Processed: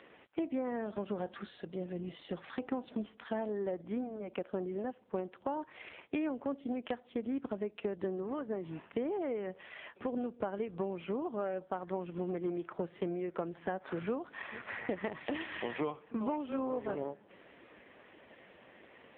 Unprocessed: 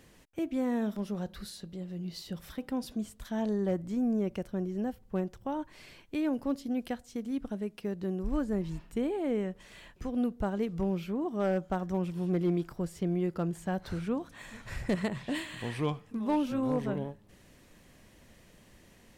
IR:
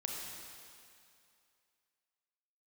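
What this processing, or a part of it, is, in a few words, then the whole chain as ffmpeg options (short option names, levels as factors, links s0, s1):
voicemail: -af "highpass=370,lowpass=2800,acompressor=threshold=0.00891:ratio=10,volume=3.16" -ar 8000 -c:a libopencore_amrnb -b:a 5900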